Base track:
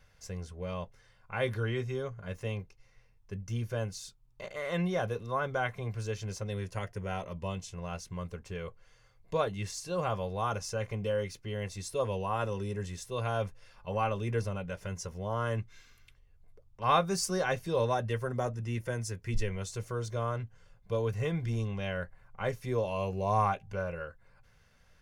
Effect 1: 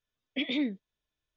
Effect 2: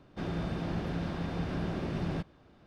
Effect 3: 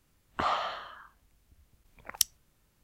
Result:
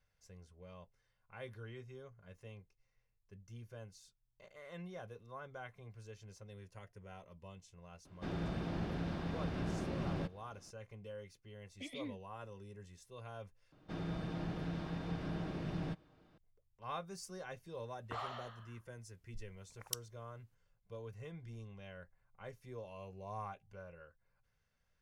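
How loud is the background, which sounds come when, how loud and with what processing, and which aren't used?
base track −17 dB
0:08.05: mix in 2 −5 dB
0:11.44: mix in 1 −16 dB
0:13.72: overwrite with 2 −7.5 dB + comb filter 6.4 ms, depth 36%
0:17.72: mix in 3 −14 dB

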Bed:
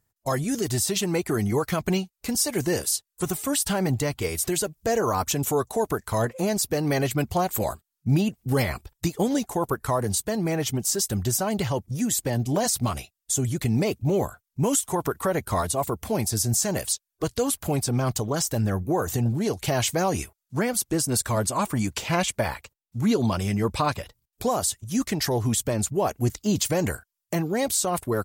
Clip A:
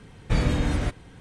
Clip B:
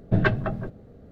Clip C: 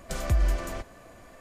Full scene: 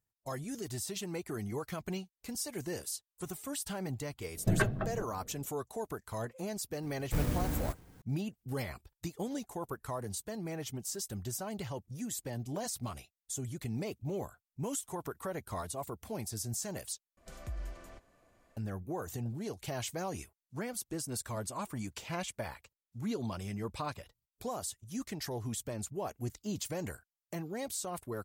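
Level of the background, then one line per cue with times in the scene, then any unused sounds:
bed −14 dB
0:04.35: mix in B −7.5 dB
0:06.82: mix in A −9.5 dB + converter with an unsteady clock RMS 0.076 ms
0:17.17: overwrite with C −17 dB

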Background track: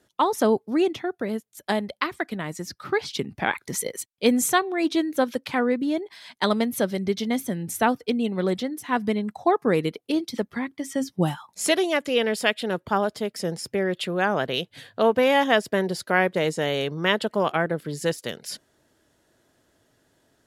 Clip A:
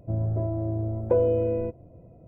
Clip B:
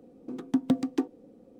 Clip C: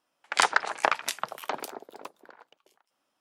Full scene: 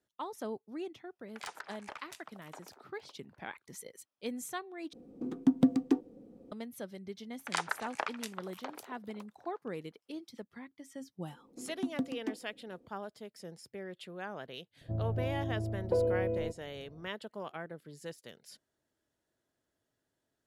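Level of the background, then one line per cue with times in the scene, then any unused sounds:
background track −19 dB
0:01.04: mix in C −17.5 dB + soft clipping −16.5 dBFS
0:04.93: overwrite with B −4.5 dB + low-shelf EQ 420 Hz +6.5 dB
0:07.15: mix in C −11.5 dB
0:11.29: mix in B −9.5 dB
0:14.81: mix in A −7.5 dB

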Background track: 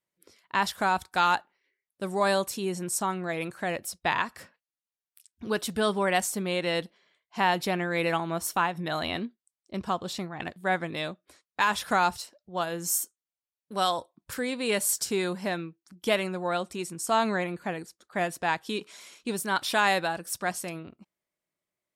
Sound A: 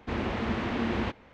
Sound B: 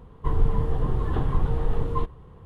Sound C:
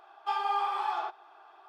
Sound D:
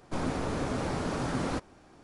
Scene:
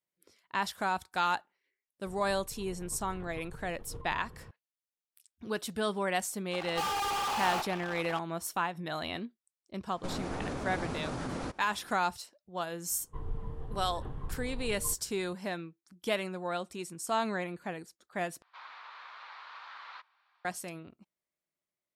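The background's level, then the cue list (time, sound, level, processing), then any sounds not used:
background track −6 dB
0:02.06: mix in B −14 dB + compressor whose output falls as the input rises −32 dBFS
0:06.51: mix in C −18 dB + fuzz pedal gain 52 dB, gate −54 dBFS
0:09.92: mix in D −2 dB + brickwall limiter −26 dBFS
0:12.89: mix in B −16 dB
0:18.42: overwrite with D −7 dB + Chebyshev band-pass filter 1,000–4,100 Hz, order 3
not used: A

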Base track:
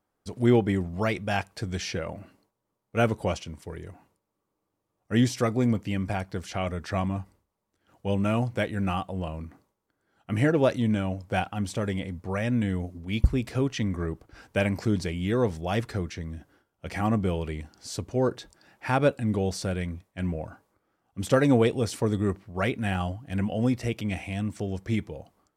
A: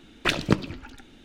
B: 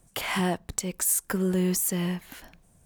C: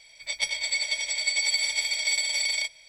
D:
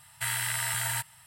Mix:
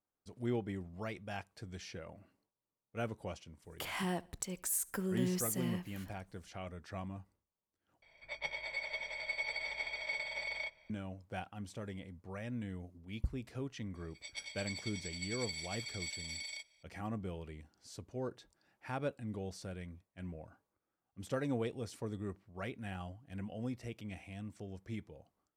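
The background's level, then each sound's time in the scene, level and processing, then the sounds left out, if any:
base track −15.5 dB
0:03.64: mix in B −10.5 dB + repeating echo 72 ms, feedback 41%, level −23.5 dB
0:08.02: overwrite with C −1 dB + low-pass filter 1,400 Hz
0:13.95: mix in C −17.5 dB
not used: A, D

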